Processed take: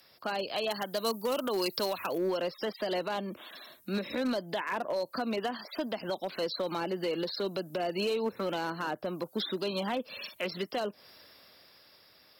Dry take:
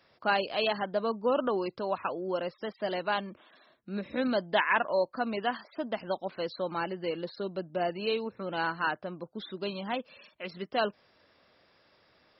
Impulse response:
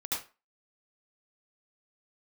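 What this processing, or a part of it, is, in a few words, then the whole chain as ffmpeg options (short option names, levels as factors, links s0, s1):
FM broadcast chain: -filter_complex "[0:a]highpass=59,dynaudnorm=f=210:g=17:m=3.16,acrossover=split=200|690|1500[s0][s1][s2][s3];[s0]acompressor=threshold=0.00447:ratio=4[s4];[s1]acompressor=threshold=0.0708:ratio=4[s5];[s2]acompressor=threshold=0.0158:ratio=4[s6];[s3]acompressor=threshold=0.00891:ratio=4[s7];[s4][s5][s6][s7]amix=inputs=4:normalize=0,aemphasis=mode=production:type=50fm,alimiter=limit=0.0708:level=0:latency=1:release=163,asoftclip=type=hard:threshold=0.0562,lowpass=f=15000:w=0.5412,lowpass=f=15000:w=1.3066,aemphasis=mode=production:type=50fm,asettb=1/sr,asplit=3[s8][s9][s10];[s8]atrim=end=0.704[s11];[s9]atrim=start=0.7:end=2.18,asetpts=PTS-STARTPTS,afade=t=in:d=0.004:c=qsin,afade=t=out:st=1.476:d=0.004:c=qsin,aemphasis=mode=production:type=75kf[s12];[s10]atrim=start=2.176[s13];[s11][s12]acrossfade=d=0.004:c1=hsin:c2=qsin[s14];[s14][s13]acrossfade=d=0.004:c1=qsin:c2=hsin"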